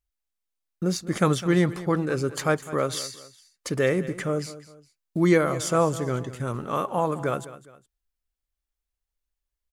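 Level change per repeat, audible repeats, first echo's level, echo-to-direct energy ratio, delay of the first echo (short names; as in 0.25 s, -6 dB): -8.5 dB, 2, -16.0 dB, -15.5 dB, 0.206 s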